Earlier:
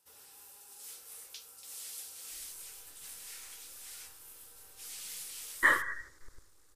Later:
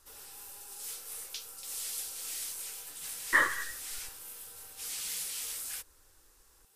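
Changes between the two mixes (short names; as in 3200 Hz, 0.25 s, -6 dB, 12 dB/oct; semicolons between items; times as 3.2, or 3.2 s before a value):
speech: entry -2.30 s; background +6.5 dB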